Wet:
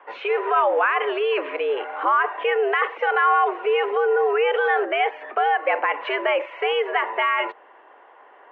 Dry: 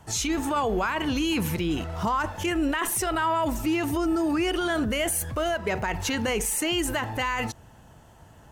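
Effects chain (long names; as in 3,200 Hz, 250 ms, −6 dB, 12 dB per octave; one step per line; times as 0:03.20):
single-sideband voice off tune +120 Hz 310–2,500 Hz
level +7 dB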